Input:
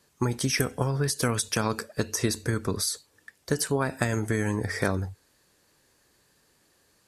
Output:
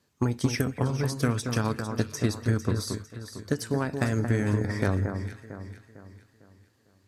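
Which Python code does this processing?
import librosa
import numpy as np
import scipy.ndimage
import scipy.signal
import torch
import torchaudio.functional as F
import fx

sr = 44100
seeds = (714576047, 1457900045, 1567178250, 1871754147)

y = fx.graphic_eq_15(x, sr, hz=(100, 250, 10000), db=(8, 6, -7))
y = fx.cheby_harmonics(y, sr, harmonics=(7,), levels_db=(-27,), full_scale_db=-6.5)
y = fx.echo_alternate(y, sr, ms=226, hz=1700.0, feedback_pct=63, wet_db=-6.0)
y = y * 10.0 ** (-3.0 / 20.0)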